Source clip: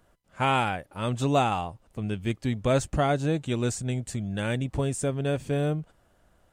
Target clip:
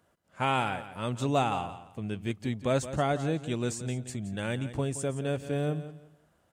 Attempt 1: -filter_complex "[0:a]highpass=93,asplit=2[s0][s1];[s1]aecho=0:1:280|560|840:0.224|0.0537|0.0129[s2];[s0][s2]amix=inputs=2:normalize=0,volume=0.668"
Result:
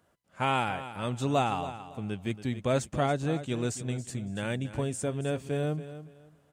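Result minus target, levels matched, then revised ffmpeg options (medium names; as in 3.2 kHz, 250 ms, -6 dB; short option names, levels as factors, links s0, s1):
echo 107 ms late
-filter_complex "[0:a]highpass=93,asplit=2[s0][s1];[s1]aecho=0:1:173|346|519:0.224|0.0537|0.0129[s2];[s0][s2]amix=inputs=2:normalize=0,volume=0.668"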